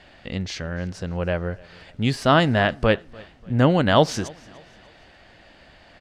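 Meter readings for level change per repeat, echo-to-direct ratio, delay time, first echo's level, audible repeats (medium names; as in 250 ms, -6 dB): -8.0 dB, -23.5 dB, 294 ms, -24.0 dB, 2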